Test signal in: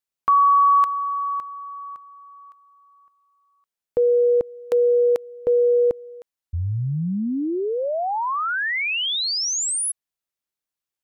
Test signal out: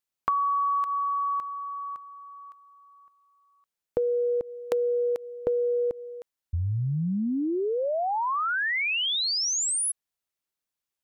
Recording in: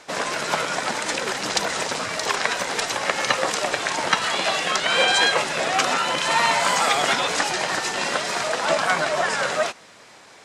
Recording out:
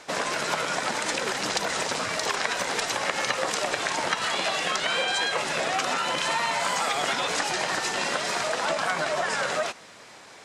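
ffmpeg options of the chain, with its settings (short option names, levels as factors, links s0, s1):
-af "acompressor=threshold=0.0562:ratio=10:attack=45:release=109:knee=6:detection=rms"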